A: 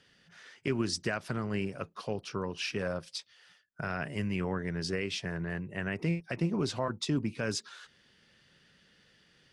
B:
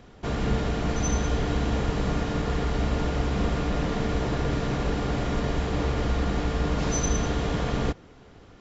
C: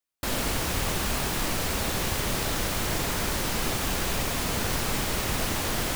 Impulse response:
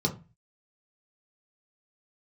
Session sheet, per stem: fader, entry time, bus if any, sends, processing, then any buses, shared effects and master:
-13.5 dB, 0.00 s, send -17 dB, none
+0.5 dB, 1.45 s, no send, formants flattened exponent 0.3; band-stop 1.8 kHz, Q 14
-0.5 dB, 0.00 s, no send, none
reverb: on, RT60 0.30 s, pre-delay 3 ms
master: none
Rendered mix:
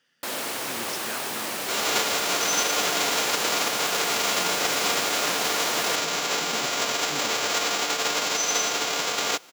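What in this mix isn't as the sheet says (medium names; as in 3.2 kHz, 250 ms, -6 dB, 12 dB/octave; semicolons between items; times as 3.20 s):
stem A -13.5 dB -> -4.0 dB; master: extra high-pass 360 Hz 12 dB/octave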